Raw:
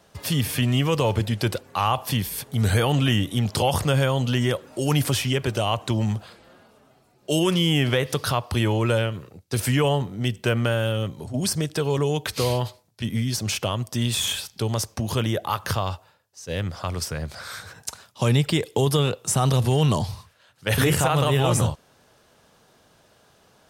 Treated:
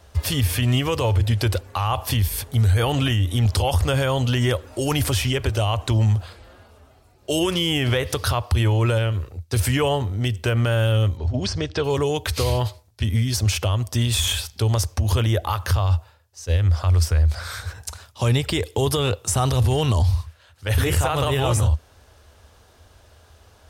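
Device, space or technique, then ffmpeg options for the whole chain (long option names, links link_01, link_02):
car stereo with a boomy subwoofer: -filter_complex "[0:a]lowshelf=frequency=110:width_type=q:width=3:gain=11.5,alimiter=limit=-14.5dB:level=0:latency=1:release=77,asettb=1/sr,asplit=3[link_01][link_02][link_03];[link_01]atrim=end=11.174[link_04];[link_02]atrim=start=11.17:end=11.84,asetpts=PTS-STARTPTS,afade=type=in:duration=0.004:curve=qsin,afade=type=out:start_time=0.666:duration=0.004:curve=qsin,lowpass=frequency=5500:width=0.5412,lowpass=frequency=5500:width=1.3066[link_05];[link_03]atrim=start=11.836[link_06];[link_04][link_05]acrossfade=duration=0.004:curve1=hsin:curve2=qsin[link_07];[link_07][link_06]acrossfade=duration=0.004:curve1=qsin:curve2=hsin,volume=3dB"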